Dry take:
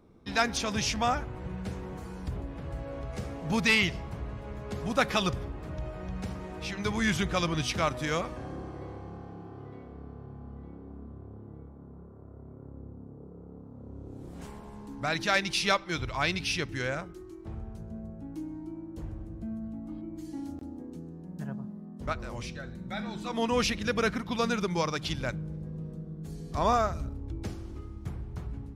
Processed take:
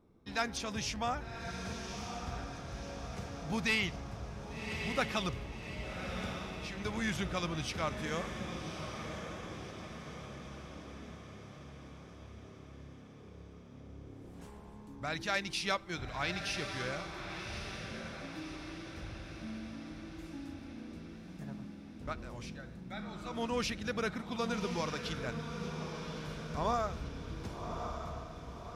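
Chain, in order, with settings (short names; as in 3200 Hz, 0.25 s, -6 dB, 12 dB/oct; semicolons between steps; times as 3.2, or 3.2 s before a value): ending faded out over 0.99 s; wow and flutter 18 cents; on a send: diffused feedback echo 1.151 s, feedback 54%, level -6.5 dB; on the sum: gain -7.5 dB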